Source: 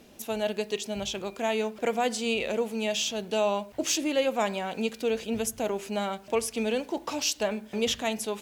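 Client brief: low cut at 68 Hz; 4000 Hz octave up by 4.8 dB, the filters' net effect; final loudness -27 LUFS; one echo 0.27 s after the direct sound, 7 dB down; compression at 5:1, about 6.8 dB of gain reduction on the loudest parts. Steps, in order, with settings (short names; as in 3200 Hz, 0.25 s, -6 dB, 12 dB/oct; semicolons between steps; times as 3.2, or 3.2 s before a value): HPF 68 Hz; bell 4000 Hz +6.5 dB; compressor 5:1, threshold -28 dBFS; echo 0.27 s -7 dB; gain +4.5 dB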